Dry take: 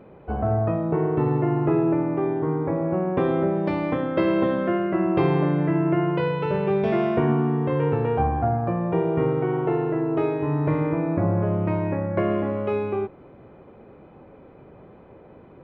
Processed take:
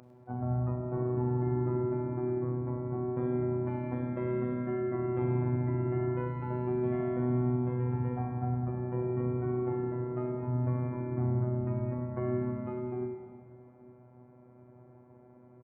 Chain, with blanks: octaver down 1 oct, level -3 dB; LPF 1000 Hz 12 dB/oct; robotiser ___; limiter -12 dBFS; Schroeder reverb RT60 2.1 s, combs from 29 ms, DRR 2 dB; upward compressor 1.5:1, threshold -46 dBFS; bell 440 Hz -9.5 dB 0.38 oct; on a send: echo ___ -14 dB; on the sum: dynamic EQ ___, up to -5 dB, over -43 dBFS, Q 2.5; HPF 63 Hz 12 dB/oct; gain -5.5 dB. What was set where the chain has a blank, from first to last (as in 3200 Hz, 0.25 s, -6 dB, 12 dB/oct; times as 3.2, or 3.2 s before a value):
124 Hz, 0.102 s, 610 Hz